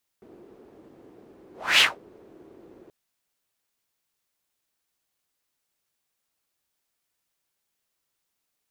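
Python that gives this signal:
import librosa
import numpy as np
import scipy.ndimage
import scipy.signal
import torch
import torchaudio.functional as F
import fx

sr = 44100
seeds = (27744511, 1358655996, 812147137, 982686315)

y = fx.whoosh(sr, seeds[0], length_s=2.68, peak_s=1.58, rise_s=0.29, fall_s=0.2, ends_hz=360.0, peak_hz=2900.0, q=3.2, swell_db=35.0)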